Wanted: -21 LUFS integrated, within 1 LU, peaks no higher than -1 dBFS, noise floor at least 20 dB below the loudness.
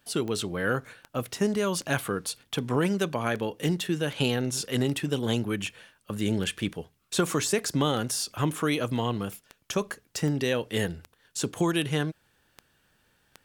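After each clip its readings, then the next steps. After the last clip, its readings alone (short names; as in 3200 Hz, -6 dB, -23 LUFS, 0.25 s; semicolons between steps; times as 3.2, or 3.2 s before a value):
clicks 18; loudness -29.0 LUFS; peak -11.5 dBFS; loudness target -21.0 LUFS
-> de-click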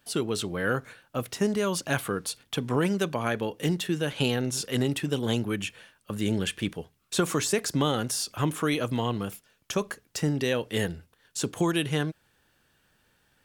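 clicks 0; loudness -29.0 LUFS; peak -11.5 dBFS; loudness target -21.0 LUFS
-> gain +8 dB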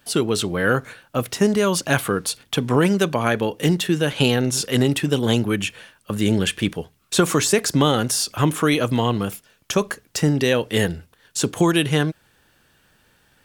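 loudness -21.0 LUFS; peak -3.5 dBFS; noise floor -61 dBFS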